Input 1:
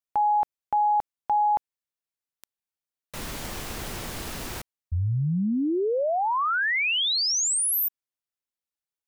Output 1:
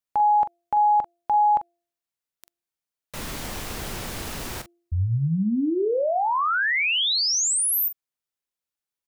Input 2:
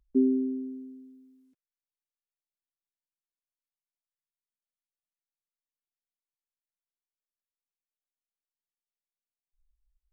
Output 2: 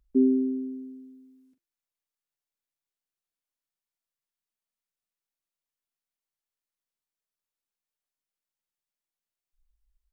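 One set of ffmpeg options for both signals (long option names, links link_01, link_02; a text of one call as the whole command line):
ffmpeg -i in.wav -filter_complex "[0:a]asplit=2[link_01][link_02];[link_02]adelay=43,volume=-11dB[link_03];[link_01][link_03]amix=inputs=2:normalize=0,bandreject=frequency=344.5:width_type=h:width=4,bandreject=frequency=689:width_type=h:width=4,volume=1.5dB" out.wav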